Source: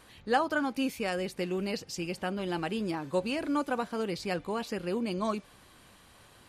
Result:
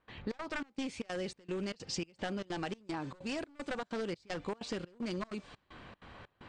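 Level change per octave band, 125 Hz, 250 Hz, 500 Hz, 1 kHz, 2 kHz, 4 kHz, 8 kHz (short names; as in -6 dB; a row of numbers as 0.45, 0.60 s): -5.5, -7.0, -8.0, -10.5, -7.0, -4.5, -3.0 dB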